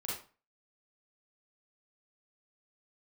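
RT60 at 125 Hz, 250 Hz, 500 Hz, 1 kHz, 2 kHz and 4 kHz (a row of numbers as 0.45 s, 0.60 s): 0.40 s, 0.35 s, 0.35 s, 0.35 s, 0.30 s, 0.30 s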